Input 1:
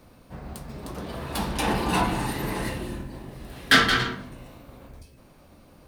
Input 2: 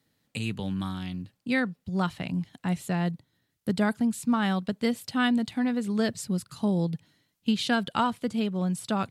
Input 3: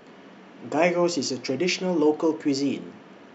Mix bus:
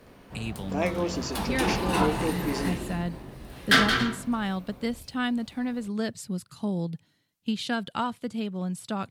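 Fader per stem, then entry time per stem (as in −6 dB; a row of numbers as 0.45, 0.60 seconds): −2.5, −3.5, −7.0 decibels; 0.00, 0.00, 0.00 seconds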